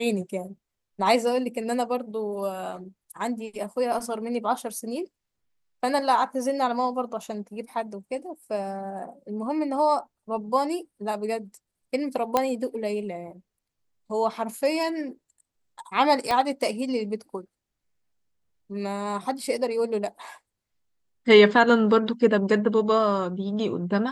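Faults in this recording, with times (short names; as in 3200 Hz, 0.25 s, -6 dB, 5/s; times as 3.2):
12.37 pop -8 dBFS
16.31 pop -11 dBFS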